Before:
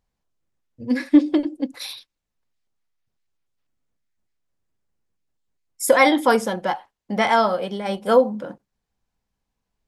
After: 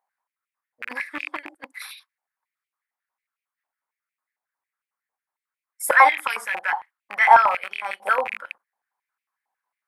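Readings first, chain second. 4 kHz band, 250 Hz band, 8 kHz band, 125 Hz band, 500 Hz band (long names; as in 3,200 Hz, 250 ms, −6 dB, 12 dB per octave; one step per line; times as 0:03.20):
−7.0 dB, below −25 dB, −3.5 dB, can't be measured, −9.5 dB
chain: loose part that buzzes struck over −33 dBFS, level −17 dBFS
flat-topped bell 4,400 Hz −9.5 dB
high-pass on a step sequencer 11 Hz 810–2,500 Hz
level −1.5 dB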